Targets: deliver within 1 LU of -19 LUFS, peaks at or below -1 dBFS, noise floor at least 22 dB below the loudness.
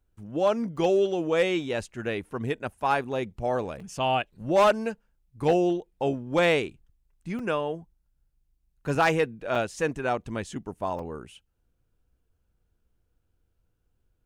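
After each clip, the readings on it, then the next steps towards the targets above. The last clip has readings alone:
clipped samples 0.3%; clipping level -14.5 dBFS; dropouts 6; longest dropout 3.6 ms; loudness -27.0 LUFS; peak level -14.5 dBFS; loudness target -19.0 LUFS
-> clip repair -14.5 dBFS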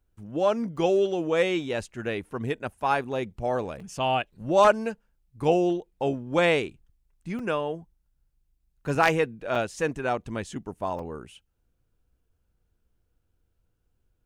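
clipped samples 0.0%; dropouts 6; longest dropout 3.6 ms
-> interpolate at 0.77/3.80/7.39/8.95/9.55/10.99 s, 3.6 ms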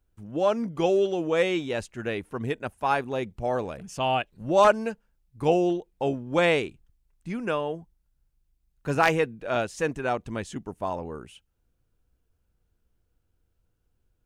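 dropouts 0; loudness -26.5 LUFS; peak level -5.5 dBFS; loudness target -19.0 LUFS
-> trim +7.5 dB; peak limiter -1 dBFS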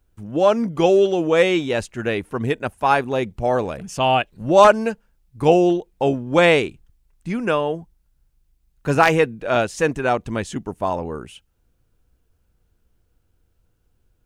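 loudness -19.5 LUFS; peak level -1.0 dBFS; noise floor -66 dBFS

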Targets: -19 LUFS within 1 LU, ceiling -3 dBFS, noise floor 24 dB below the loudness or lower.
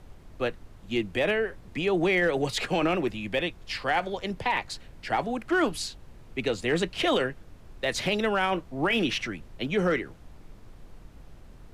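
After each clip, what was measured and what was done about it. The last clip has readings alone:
clipped samples 0.2%; clipping level -17.0 dBFS; noise floor -50 dBFS; noise floor target -52 dBFS; loudness -28.0 LUFS; peak level -17.0 dBFS; loudness target -19.0 LUFS
-> clip repair -17 dBFS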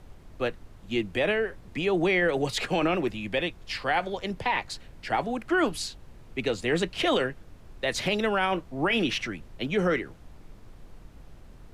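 clipped samples 0.0%; noise floor -50 dBFS; noise floor target -52 dBFS
-> noise print and reduce 6 dB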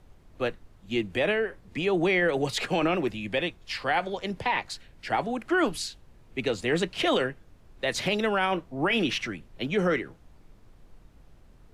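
noise floor -55 dBFS; loudness -28.0 LUFS; peak level -15.0 dBFS; loudness target -19.0 LUFS
-> trim +9 dB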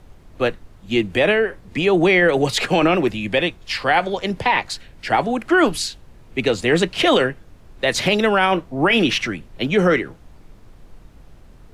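loudness -19.0 LUFS; peak level -6.0 dBFS; noise floor -46 dBFS

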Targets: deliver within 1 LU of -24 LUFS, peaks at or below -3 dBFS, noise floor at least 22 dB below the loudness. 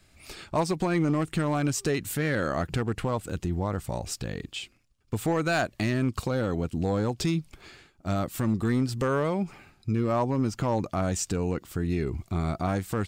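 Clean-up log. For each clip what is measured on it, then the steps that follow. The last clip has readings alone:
clipped samples 0.8%; clipping level -17.5 dBFS; loudness -28.5 LUFS; peak level -17.5 dBFS; loudness target -24.0 LUFS
-> clip repair -17.5 dBFS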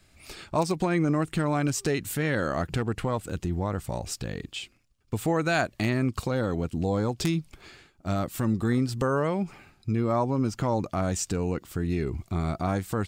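clipped samples 0.0%; loudness -28.0 LUFS; peak level -8.5 dBFS; loudness target -24.0 LUFS
-> trim +4 dB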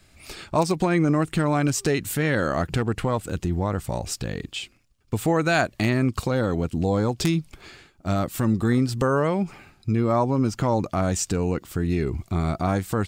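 loudness -24.0 LUFS; peak level -4.5 dBFS; noise floor -58 dBFS

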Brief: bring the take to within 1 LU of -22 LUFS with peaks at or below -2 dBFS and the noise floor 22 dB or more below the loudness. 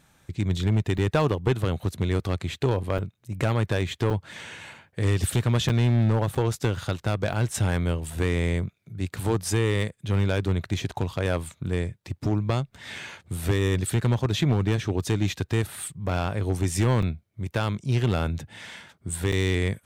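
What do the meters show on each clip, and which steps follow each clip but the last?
clipped samples 1.2%; clipping level -15.0 dBFS; dropouts 8; longest dropout 5.5 ms; loudness -26.5 LUFS; peak level -15.0 dBFS; loudness target -22.0 LUFS
-> clip repair -15 dBFS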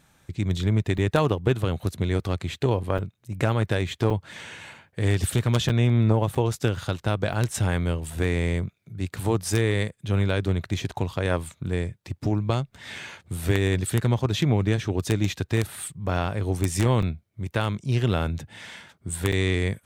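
clipped samples 0.0%; dropouts 8; longest dropout 5.5 ms
-> interpolate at 0.98/2.98/4.10/5.69/6.35/7.33/17.02/19.32 s, 5.5 ms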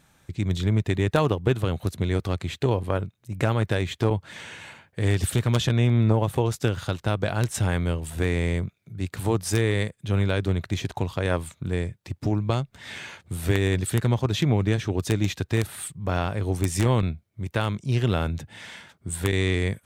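dropouts 0; loudness -25.5 LUFS; peak level -6.0 dBFS; loudness target -22.0 LUFS
-> trim +3.5 dB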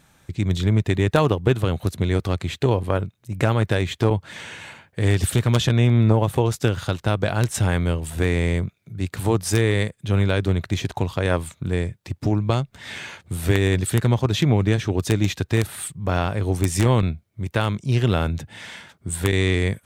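loudness -22.0 LUFS; peak level -2.5 dBFS; noise floor -63 dBFS

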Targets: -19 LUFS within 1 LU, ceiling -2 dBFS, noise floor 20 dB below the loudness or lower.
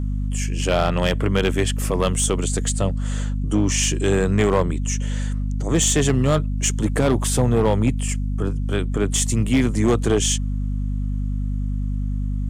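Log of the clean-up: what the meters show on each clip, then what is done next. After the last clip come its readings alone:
clipped samples 0.9%; clipping level -11.0 dBFS; hum 50 Hz; highest harmonic 250 Hz; hum level -21 dBFS; loudness -21.5 LUFS; peak level -11.0 dBFS; loudness target -19.0 LUFS
-> clip repair -11 dBFS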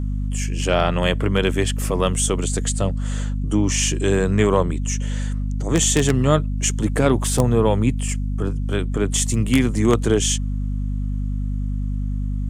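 clipped samples 0.0%; hum 50 Hz; highest harmonic 250 Hz; hum level -21 dBFS
-> de-hum 50 Hz, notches 5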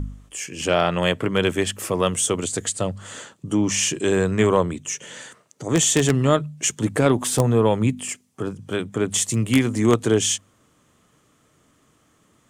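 hum not found; loudness -21.5 LUFS; peak level -1.5 dBFS; loudness target -19.0 LUFS
-> trim +2.5 dB; peak limiter -2 dBFS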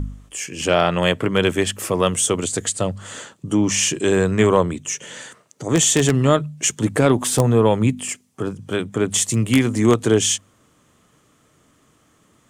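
loudness -19.0 LUFS; peak level -2.0 dBFS; noise floor -59 dBFS

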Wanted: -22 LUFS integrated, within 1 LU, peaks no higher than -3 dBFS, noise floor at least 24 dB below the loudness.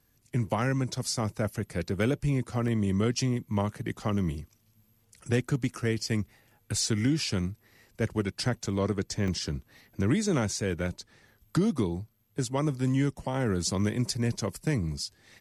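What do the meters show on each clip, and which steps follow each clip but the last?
dropouts 2; longest dropout 1.2 ms; loudness -30.0 LUFS; peak level -14.5 dBFS; loudness target -22.0 LUFS
-> interpolate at 2.68/9.28 s, 1.2 ms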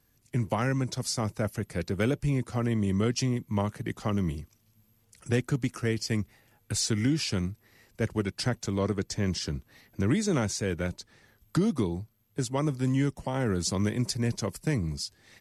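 dropouts 0; loudness -30.0 LUFS; peak level -14.5 dBFS; loudness target -22.0 LUFS
-> trim +8 dB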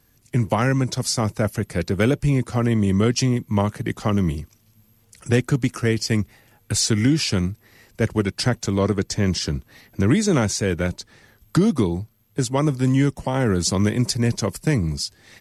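loudness -22.0 LUFS; peak level -6.5 dBFS; noise floor -59 dBFS

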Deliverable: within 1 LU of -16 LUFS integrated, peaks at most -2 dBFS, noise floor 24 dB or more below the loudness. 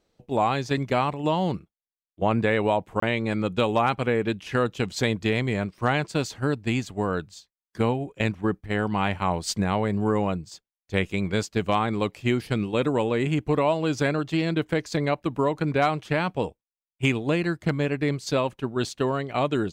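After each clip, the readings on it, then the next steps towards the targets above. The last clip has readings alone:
dropouts 1; longest dropout 24 ms; loudness -25.5 LUFS; peak level -10.5 dBFS; loudness target -16.0 LUFS
-> interpolate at 3.00 s, 24 ms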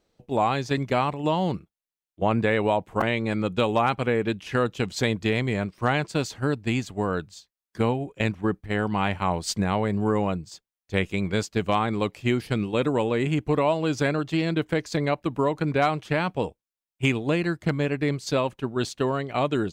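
dropouts 0; loudness -25.5 LUFS; peak level -10.5 dBFS; loudness target -16.0 LUFS
-> trim +9.5 dB; peak limiter -2 dBFS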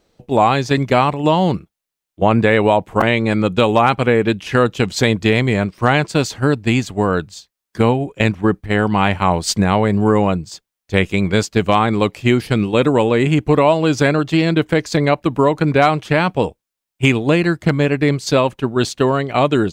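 loudness -16.5 LUFS; peak level -2.0 dBFS; noise floor -83 dBFS

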